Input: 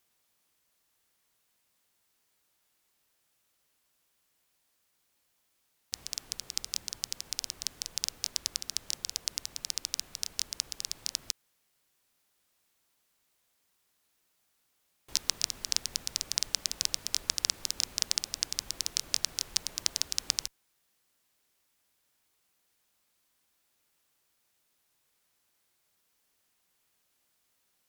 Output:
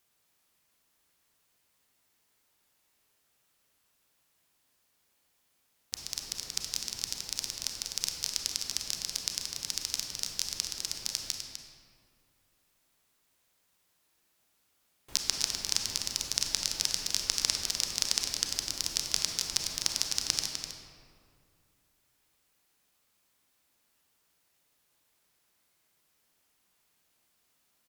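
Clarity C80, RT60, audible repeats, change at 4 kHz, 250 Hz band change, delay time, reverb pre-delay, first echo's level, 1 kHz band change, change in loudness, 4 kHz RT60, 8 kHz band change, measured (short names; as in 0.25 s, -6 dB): 3.0 dB, 2.2 s, 1, +1.5 dB, +4.0 dB, 0.252 s, 29 ms, -8.5 dB, +2.5 dB, +1.5 dB, 1.2 s, +1.5 dB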